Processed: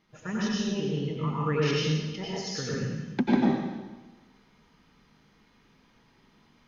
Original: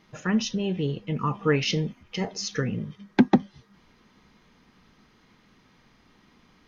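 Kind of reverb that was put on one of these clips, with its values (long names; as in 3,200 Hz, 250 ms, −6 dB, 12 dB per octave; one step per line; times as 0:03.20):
dense smooth reverb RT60 1.2 s, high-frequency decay 0.95×, pre-delay 80 ms, DRR −6 dB
level −9.5 dB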